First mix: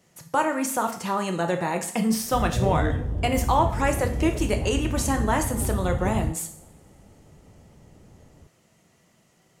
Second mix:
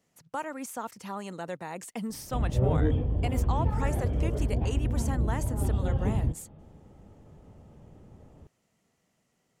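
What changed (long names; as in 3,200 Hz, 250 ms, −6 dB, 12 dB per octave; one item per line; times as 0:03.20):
speech −8.5 dB
reverb: off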